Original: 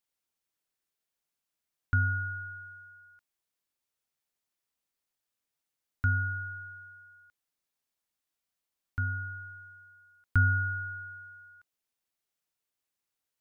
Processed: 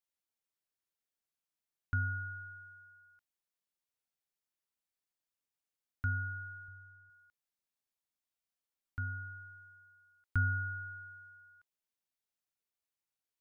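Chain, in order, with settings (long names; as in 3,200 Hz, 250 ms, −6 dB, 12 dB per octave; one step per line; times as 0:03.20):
0:06.68–0:07.10: spectral tilt −2.5 dB per octave
level −7 dB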